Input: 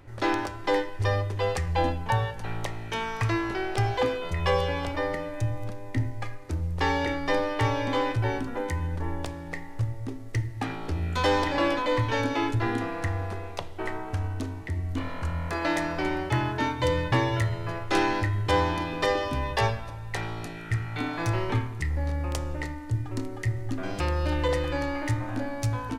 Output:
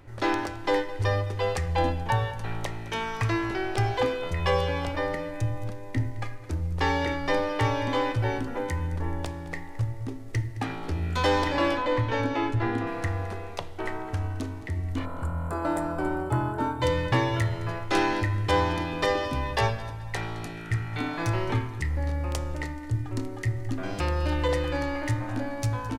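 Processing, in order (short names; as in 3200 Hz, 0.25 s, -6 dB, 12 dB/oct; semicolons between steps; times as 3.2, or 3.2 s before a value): 11.77–12.87 high shelf 4000 Hz -9.5 dB; 15.05–16.82 spectral gain 1600–7100 Hz -14 dB; on a send: feedback echo 0.215 s, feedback 36%, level -18 dB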